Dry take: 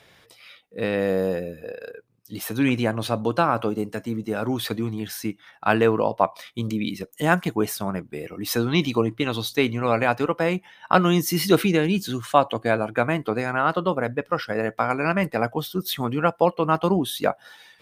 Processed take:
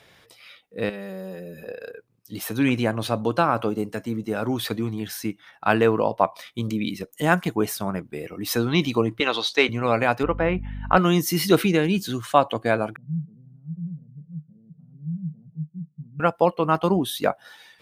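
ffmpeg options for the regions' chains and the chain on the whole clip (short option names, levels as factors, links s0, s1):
-filter_complex "[0:a]asettb=1/sr,asplit=3[s0][s1][s2];[s0]atrim=end=0.894[s3];[s1]atrim=start=0.89:end=1.68,asetpts=PTS-STARTPTS,afade=t=in:d=0.004:c=qsin,afade=t=out:st=0.786:d=0.004:c=qsin,highshelf=f=7600:g=6.5,aecho=1:1:5.2:0.98,atrim=end_sample=34839,acompressor=threshold=0.0158:ratio=3:attack=3.2:release=140:knee=1:detection=peak[s4];[s2]atrim=start=1.676[s5];[s3][s4]acrossfade=d=0.004:c1=hsin:c2=qsin[s6];[s6][s5]acrossfade=d=0.004:c1=qsin:c2=hsin,asettb=1/sr,asplit=3[s7][s8][s9];[s7]atrim=end=9.204[s10];[s8]atrim=start=9.2:end=9.69,asetpts=PTS-STARTPTS,afade=t=in:d=0.004:c=qsin,afade=t=out:st=0.486:d=0.004:c=qsin,highpass=490,lowpass=5100,acontrast=60[s11];[s9]atrim=start=9.686[s12];[s10][s11]acrossfade=d=0.004:c1=hsin:c2=qsin[s13];[s13][s12]acrossfade=d=0.004:c1=qsin:c2=hsin,asettb=1/sr,asplit=3[s14][s15][s16];[s14]atrim=end=10.234[s17];[s15]atrim=start=10.23:end=10.97,asetpts=PTS-STARTPTS,afade=t=in:d=0.004:c=qsin,afade=t=out:st=0.736:d=0.004:c=qsin,lowpass=f=2900:w=0.5412,lowpass=f=2900:w=1.3066,aeval=exprs='val(0)+0.0282*(sin(2*PI*50*n/s)+sin(2*PI*2*50*n/s)/2+sin(2*PI*3*50*n/s)/3+sin(2*PI*4*50*n/s)/4+sin(2*PI*5*50*n/s)/5)':c=same[s18];[s16]atrim=start=10.966[s19];[s17][s18]acrossfade=d=0.004:c1=hsin:c2=qsin[s20];[s20][s19]acrossfade=d=0.004:c1=qsin:c2=hsin,asettb=1/sr,asplit=3[s21][s22][s23];[s21]atrim=end=12.964[s24];[s22]atrim=start=12.96:end=16.2,asetpts=PTS-STARTPTS,afade=t=in:d=0.004:c=qsin,afade=t=out:st=3.236:d=0.004:c=qsin,aeval=exprs='val(0)+0.5*0.0531*sgn(val(0))':c=same,deesser=0.75,asuperpass=centerf=160:order=4:qfactor=5.8[s25];[s23]atrim=start=16.196[s26];[s24][s25]acrossfade=d=0.004:c1=hsin:c2=qsin[s27];[s27][s26]acrossfade=d=0.004:c1=qsin:c2=hsin"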